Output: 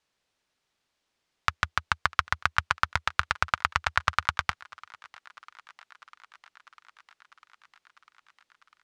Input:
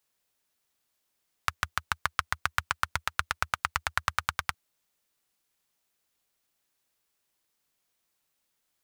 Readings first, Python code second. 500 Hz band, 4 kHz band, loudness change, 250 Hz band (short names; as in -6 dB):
+4.0 dB, +3.0 dB, +3.5 dB, +4.0 dB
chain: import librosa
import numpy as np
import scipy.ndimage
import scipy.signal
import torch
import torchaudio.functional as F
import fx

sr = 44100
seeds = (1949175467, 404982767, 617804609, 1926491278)

p1 = scipy.signal.sosfilt(scipy.signal.butter(2, 5100.0, 'lowpass', fs=sr, output='sos'), x)
p2 = p1 + fx.echo_thinned(p1, sr, ms=649, feedback_pct=78, hz=380.0, wet_db=-23.5, dry=0)
y = p2 * librosa.db_to_amplitude(4.0)